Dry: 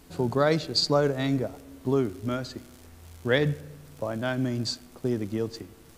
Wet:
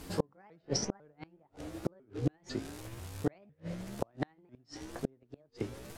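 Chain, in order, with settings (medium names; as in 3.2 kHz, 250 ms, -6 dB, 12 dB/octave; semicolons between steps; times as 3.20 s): sawtooth pitch modulation +6 st, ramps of 499 ms; low-pass that closes with the level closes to 2.2 kHz, closed at -24 dBFS; inverted gate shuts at -22 dBFS, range -40 dB; trim +5.5 dB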